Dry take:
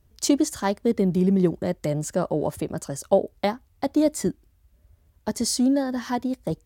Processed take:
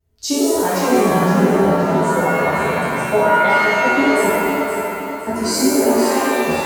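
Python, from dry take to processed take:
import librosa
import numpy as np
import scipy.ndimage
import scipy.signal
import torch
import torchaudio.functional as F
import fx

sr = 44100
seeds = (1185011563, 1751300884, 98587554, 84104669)

p1 = fx.wow_flutter(x, sr, seeds[0], rate_hz=2.1, depth_cents=140.0)
p2 = fx.noise_reduce_blind(p1, sr, reduce_db=9)
p3 = p2 + fx.echo_feedback(p2, sr, ms=516, feedback_pct=38, wet_db=-7.0, dry=0)
p4 = fx.rev_shimmer(p3, sr, seeds[1], rt60_s=1.4, semitones=7, shimmer_db=-2, drr_db=-9.0)
y = F.gain(torch.from_numpy(p4), -3.5).numpy()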